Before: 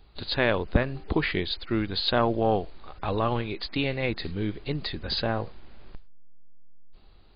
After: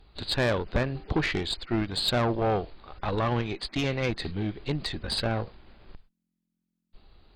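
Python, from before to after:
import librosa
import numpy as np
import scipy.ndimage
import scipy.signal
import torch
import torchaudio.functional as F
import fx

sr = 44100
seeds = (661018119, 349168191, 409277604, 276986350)

y = fx.tube_stage(x, sr, drive_db=22.0, bias=0.65)
y = y * 10.0 ** (3.5 / 20.0)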